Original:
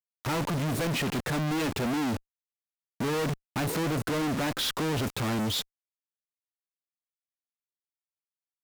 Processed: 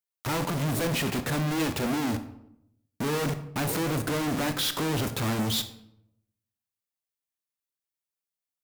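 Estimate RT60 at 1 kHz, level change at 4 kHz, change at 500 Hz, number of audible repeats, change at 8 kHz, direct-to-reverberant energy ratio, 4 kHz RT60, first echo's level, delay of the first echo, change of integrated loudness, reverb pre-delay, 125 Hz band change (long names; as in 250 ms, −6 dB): 0.70 s, +1.5 dB, +0.5 dB, no echo audible, +3.0 dB, 9.0 dB, 0.50 s, no echo audible, no echo audible, +1.0 dB, 21 ms, +1.5 dB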